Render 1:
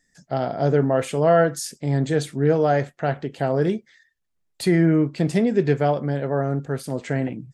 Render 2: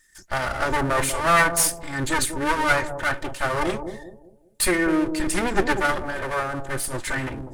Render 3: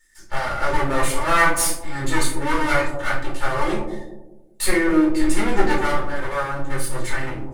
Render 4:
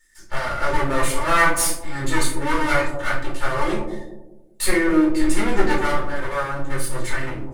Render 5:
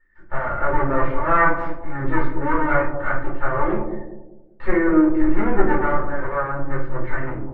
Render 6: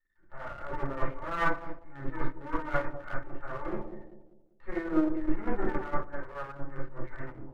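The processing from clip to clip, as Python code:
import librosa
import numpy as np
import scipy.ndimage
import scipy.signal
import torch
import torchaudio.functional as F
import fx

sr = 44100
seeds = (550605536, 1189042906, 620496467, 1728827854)

y1 = fx.lower_of_two(x, sr, delay_ms=3.3)
y1 = fx.graphic_eq_15(y1, sr, hz=(250, 630, 1600, 10000), db=(-12, -10, 5, 12))
y1 = fx.echo_bbd(y1, sr, ms=195, stages=1024, feedback_pct=37, wet_db=-7.0)
y1 = y1 * librosa.db_to_amplitude(6.0)
y2 = fx.low_shelf(y1, sr, hz=330.0, db=-3.0)
y2 = fx.room_shoebox(y2, sr, seeds[0], volume_m3=370.0, walls='furnished', distance_m=4.3)
y2 = y2 * librosa.db_to_amplitude(-6.5)
y3 = fx.notch(y2, sr, hz=800.0, q=17.0)
y4 = scipy.signal.sosfilt(scipy.signal.butter(4, 1700.0, 'lowpass', fs=sr, output='sos'), y3)
y4 = y4 * librosa.db_to_amplitude(1.5)
y5 = np.where(y4 < 0.0, 10.0 ** (-7.0 / 20.0) * y4, y4)
y5 = fx.upward_expand(y5, sr, threshold_db=-23.0, expansion=1.5)
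y5 = y5 * librosa.db_to_amplitude(-7.5)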